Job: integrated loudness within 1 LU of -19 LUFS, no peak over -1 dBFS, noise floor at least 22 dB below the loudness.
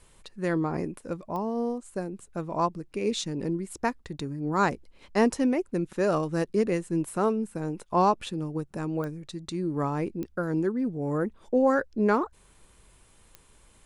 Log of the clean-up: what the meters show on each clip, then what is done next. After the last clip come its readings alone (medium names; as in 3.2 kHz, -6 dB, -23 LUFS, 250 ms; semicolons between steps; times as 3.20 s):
clicks found 4; loudness -28.5 LUFS; peak level -9.0 dBFS; loudness target -19.0 LUFS
-> de-click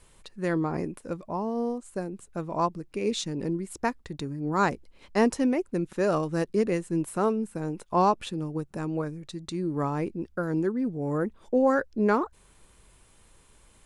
clicks found 0; loudness -28.5 LUFS; peak level -9.0 dBFS; loudness target -19.0 LUFS
-> trim +9.5 dB; peak limiter -1 dBFS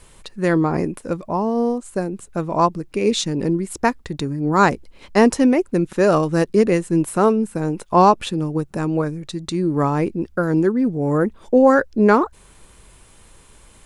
loudness -19.0 LUFS; peak level -1.0 dBFS; noise floor -49 dBFS